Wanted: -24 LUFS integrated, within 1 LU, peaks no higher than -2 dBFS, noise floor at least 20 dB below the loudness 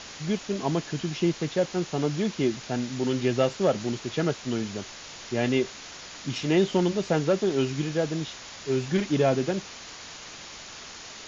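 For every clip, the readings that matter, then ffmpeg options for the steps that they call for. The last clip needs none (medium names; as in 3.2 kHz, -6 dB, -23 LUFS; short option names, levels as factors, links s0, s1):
noise floor -43 dBFS; noise floor target -47 dBFS; loudness -27.0 LUFS; peak level -10.5 dBFS; loudness target -24.0 LUFS
-> -af "afftdn=nr=6:nf=-43"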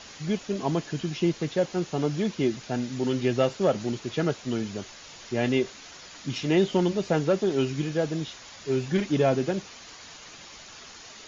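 noise floor -46 dBFS; noise floor target -47 dBFS
-> -af "afftdn=nr=6:nf=-46"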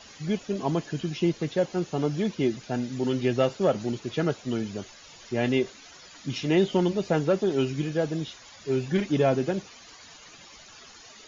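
noise floor -49 dBFS; loudness -27.0 LUFS; peak level -10.5 dBFS; loudness target -24.0 LUFS
-> -af "volume=1.41"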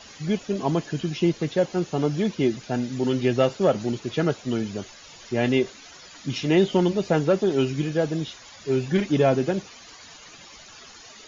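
loudness -24.0 LUFS; peak level -7.5 dBFS; noise floor -47 dBFS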